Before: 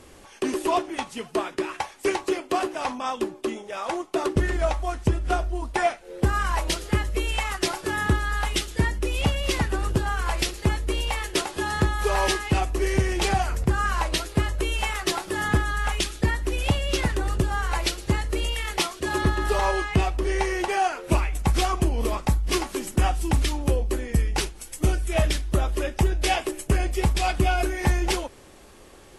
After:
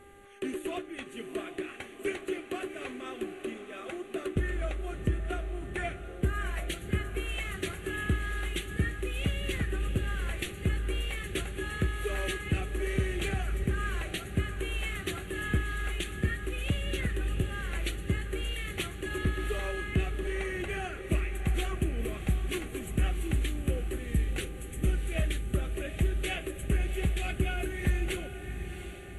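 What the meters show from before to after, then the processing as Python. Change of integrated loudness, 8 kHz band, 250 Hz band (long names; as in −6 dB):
−8.0 dB, −11.5 dB, −7.0 dB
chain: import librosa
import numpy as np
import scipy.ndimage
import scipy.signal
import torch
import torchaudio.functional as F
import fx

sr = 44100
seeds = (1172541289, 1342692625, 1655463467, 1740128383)

y = fx.fixed_phaser(x, sr, hz=2200.0, stages=4)
y = fx.dmg_buzz(y, sr, base_hz=400.0, harmonics=5, level_db=-49.0, tilt_db=-5, odd_only=False)
y = fx.echo_diffused(y, sr, ms=728, feedback_pct=52, wet_db=-9.5)
y = F.gain(torch.from_numpy(y), -6.5).numpy()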